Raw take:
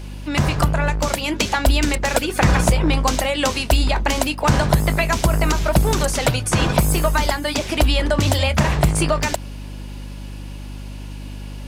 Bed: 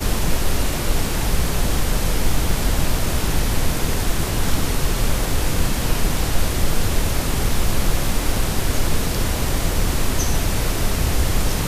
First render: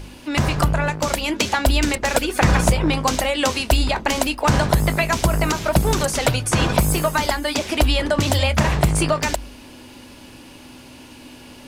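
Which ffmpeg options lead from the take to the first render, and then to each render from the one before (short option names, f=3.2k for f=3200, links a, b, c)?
-af "bandreject=f=50:t=h:w=4,bandreject=f=100:t=h:w=4,bandreject=f=150:t=h:w=4,bandreject=f=200:t=h:w=4"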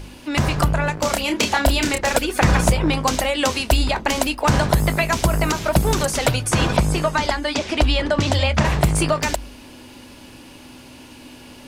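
-filter_complex "[0:a]asettb=1/sr,asplit=3[a][b][c];[a]atrim=end=0.944[d];[b]atrim=start=0.94:end=2.13,asetpts=PTS-STARTPTS,afade=t=in:d=0.004:c=qsin,afade=t=out:st=1.186:d=0.004:c=qsin,asplit=2[e][f];[f]adelay=29,volume=-5.5dB[g];[e][g]amix=inputs=2:normalize=0,atrim=end_sample=52479[h];[c]atrim=start=2.126[i];[d][h]acrossfade=d=0.004:c1=hsin:c2=qsin[j];[j][i]acrossfade=d=0.004:c1=qsin:c2=hsin,asettb=1/sr,asplit=3[k][l][m];[k]atrim=end=6.774[n];[l]atrim=start=6.77:end=8.65,asetpts=PTS-STARTPTS,afade=t=in:d=0.004:c=qsin,afade=t=out:st=1.876:d=0.004:c=qsin,lowpass=6.4k[o];[m]atrim=start=8.646[p];[n][o]acrossfade=d=0.004:c1=hsin:c2=qsin[q];[q][p]acrossfade=d=0.004:c1=qsin:c2=hsin"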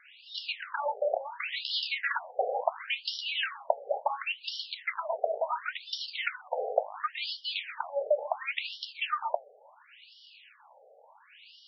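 -af "flanger=delay=7.8:depth=5:regen=-78:speed=1.6:shape=triangular,afftfilt=real='re*between(b*sr/1024,550*pow(4100/550,0.5+0.5*sin(2*PI*0.71*pts/sr))/1.41,550*pow(4100/550,0.5+0.5*sin(2*PI*0.71*pts/sr))*1.41)':imag='im*between(b*sr/1024,550*pow(4100/550,0.5+0.5*sin(2*PI*0.71*pts/sr))/1.41,550*pow(4100/550,0.5+0.5*sin(2*PI*0.71*pts/sr))*1.41)':win_size=1024:overlap=0.75"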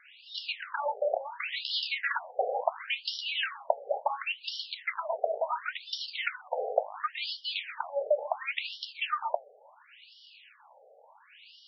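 -af anull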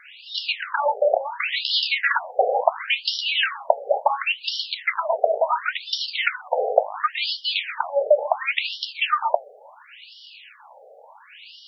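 -af "volume=10dB,alimiter=limit=-1dB:level=0:latency=1"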